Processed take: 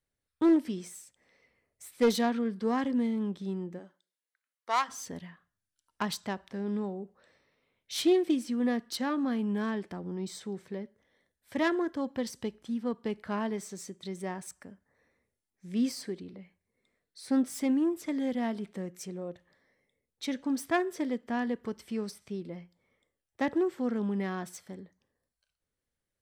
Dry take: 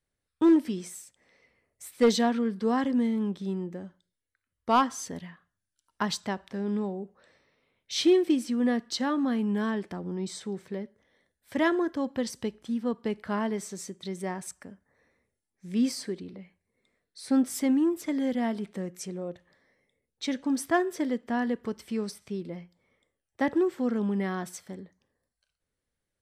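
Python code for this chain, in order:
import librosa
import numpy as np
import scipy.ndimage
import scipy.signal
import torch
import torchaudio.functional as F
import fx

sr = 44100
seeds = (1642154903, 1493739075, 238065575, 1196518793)

y = fx.self_delay(x, sr, depth_ms=0.067)
y = fx.highpass(y, sr, hz=fx.line((3.78, 290.0), (4.88, 890.0)), slope=12, at=(3.78, 4.88), fade=0.02)
y = y * librosa.db_to_amplitude(-3.0)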